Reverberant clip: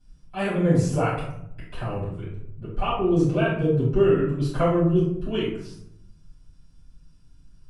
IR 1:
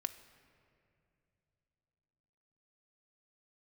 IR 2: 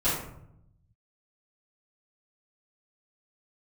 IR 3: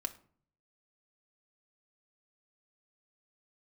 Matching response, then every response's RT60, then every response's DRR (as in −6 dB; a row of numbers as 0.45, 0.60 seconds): 2; 2.7, 0.75, 0.50 seconds; 8.5, −13.5, 5.0 decibels